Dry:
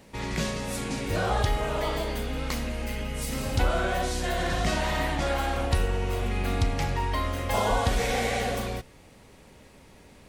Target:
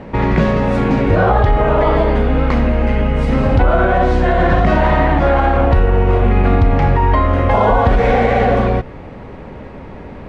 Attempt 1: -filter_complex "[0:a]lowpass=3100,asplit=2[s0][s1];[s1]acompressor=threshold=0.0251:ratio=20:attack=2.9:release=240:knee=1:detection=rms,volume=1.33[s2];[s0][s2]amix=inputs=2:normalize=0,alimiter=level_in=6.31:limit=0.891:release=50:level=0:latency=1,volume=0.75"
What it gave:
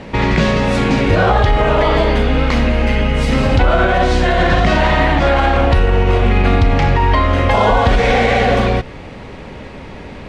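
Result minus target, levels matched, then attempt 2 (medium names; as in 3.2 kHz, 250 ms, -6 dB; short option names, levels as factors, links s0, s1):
4 kHz band +9.5 dB
-filter_complex "[0:a]lowpass=1500,asplit=2[s0][s1];[s1]acompressor=threshold=0.0251:ratio=20:attack=2.9:release=240:knee=1:detection=rms,volume=1.33[s2];[s0][s2]amix=inputs=2:normalize=0,alimiter=level_in=6.31:limit=0.891:release=50:level=0:latency=1,volume=0.75"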